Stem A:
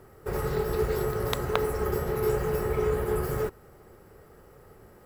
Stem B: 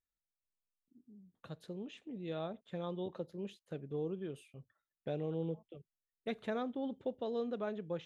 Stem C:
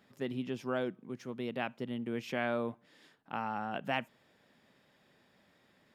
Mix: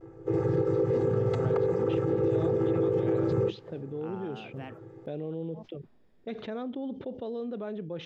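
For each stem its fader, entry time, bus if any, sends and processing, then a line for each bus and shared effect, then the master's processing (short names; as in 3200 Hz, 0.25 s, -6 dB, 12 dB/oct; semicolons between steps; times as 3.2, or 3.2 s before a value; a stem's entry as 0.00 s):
0.0 dB, 0.00 s, no send, chord vocoder minor triad, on A2; comb 2.4 ms, depth 99%
-5.0 dB, 0.00 s, no send, low-pass opened by the level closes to 370 Hz, open at -37.5 dBFS; steep low-pass 5900 Hz; fast leveller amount 70%
-16.5 dB, 0.70 s, no send, harmonic-percussive split harmonic +7 dB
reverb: off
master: bell 310 Hz +6 dB 2.1 oct; limiter -18.5 dBFS, peak gain reduction 11 dB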